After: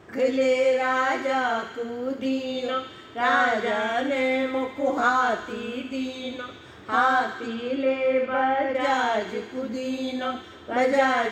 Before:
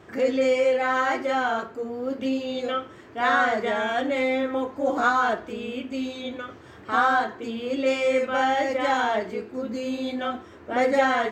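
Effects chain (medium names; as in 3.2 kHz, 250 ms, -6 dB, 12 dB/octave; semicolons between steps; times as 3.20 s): 7.33–8.75 s: low-pass that closes with the level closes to 2 kHz, closed at -21.5 dBFS; feedback echo behind a high-pass 72 ms, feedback 77%, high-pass 2.1 kHz, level -8 dB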